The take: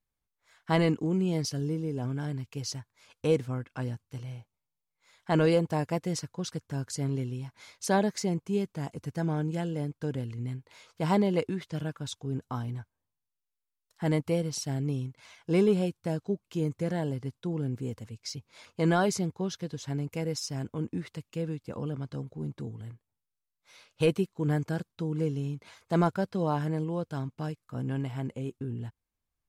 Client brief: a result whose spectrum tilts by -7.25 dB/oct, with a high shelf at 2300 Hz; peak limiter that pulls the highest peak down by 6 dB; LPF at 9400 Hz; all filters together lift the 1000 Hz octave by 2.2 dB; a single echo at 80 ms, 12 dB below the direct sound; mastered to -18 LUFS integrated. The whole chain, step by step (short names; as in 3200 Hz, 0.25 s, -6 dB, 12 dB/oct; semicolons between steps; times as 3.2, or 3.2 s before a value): LPF 9400 Hz; bell 1000 Hz +4 dB; high shelf 2300 Hz -6.5 dB; limiter -19.5 dBFS; echo 80 ms -12 dB; gain +14.5 dB